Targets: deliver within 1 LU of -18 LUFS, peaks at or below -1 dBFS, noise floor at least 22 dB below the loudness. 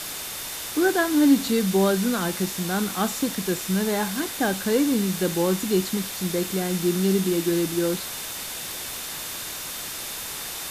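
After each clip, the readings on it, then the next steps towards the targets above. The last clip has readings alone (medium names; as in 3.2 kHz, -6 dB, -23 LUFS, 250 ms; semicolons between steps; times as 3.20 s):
steady tone 3.6 kHz; tone level -44 dBFS; noise floor -34 dBFS; noise floor target -47 dBFS; loudness -24.5 LUFS; peak level -8.0 dBFS; loudness target -18.0 LUFS
-> band-stop 3.6 kHz, Q 30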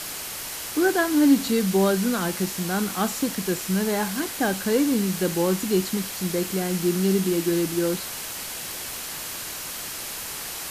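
steady tone not found; noise floor -34 dBFS; noise floor target -47 dBFS
-> noise reduction 13 dB, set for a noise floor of -34 dBFS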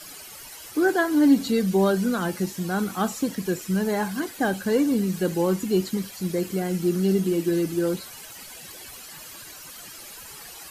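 noise floor -42 dBFS; noise floor target -46 dBFS
-> noise reduction 6 dB, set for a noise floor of -42 dBFS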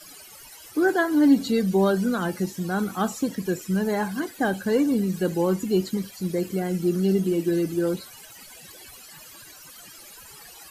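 noise floor -46 dBFS; loudness -24.0 LUFS; peak level -9.0 dBFS; loudness target -18.0 LUFS
-> trim +6 dB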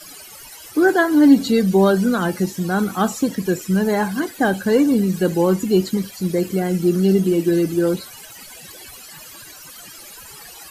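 loudness -18.0 LUFS; peak level -3.0 dBFS; noise floor -40 dBFS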